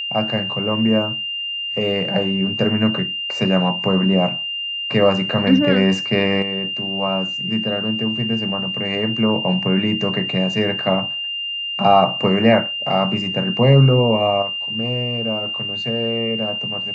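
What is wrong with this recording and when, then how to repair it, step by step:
tone 2800 Hz -23 dBFS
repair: notch 2800 Hz, Q 30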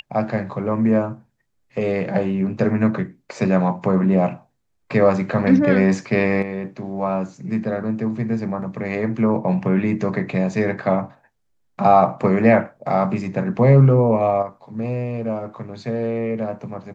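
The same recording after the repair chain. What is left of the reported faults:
none

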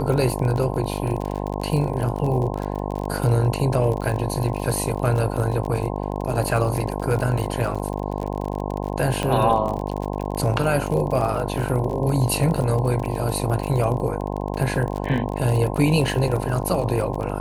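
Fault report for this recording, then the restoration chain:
buzz 50 Hz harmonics 21 -27 dBFS
crackle 39/s -26 dBFS
9.23 pop -10 dBFS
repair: de-click; de-hum 50 Hz, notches 21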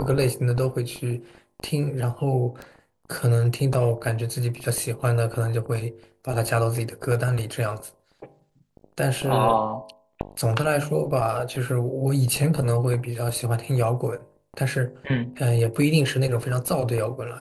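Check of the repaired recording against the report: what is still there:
none

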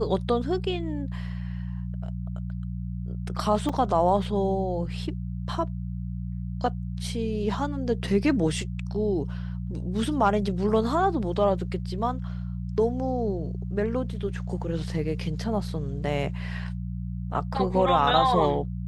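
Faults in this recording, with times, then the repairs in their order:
hum 60 Hz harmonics 3 -32 dBFS
3.69 gap 4.5 ms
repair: de-hum 60 Hz, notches 3; interpolate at 3.69, 4.5 ms

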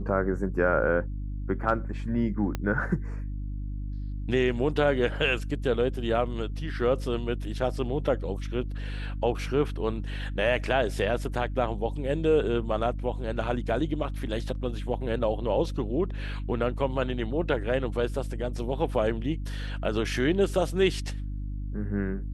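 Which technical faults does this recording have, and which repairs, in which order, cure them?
hum 50 Hz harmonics 6 -33 dBFS
2.55 pop -16 dBFS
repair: de-click; de-hum 50 Hz, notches 6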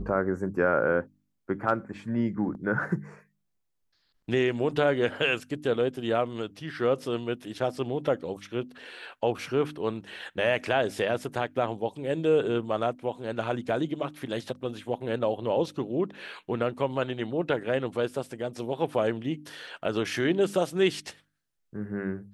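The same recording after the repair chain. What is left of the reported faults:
2.55 pop

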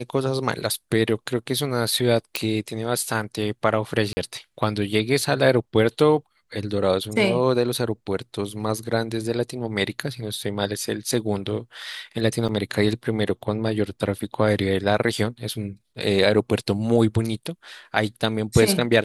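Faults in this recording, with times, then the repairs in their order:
2.36 pop
4.13–4.17 gap 40 ms
12.48–12.49 gap 7.3 ms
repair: de-click; interpolate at 4.13, 40 ms; interpolate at 12.48, 7.3 ms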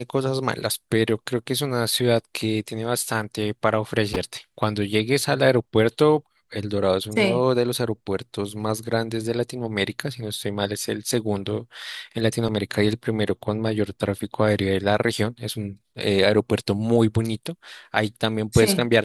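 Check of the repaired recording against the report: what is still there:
none

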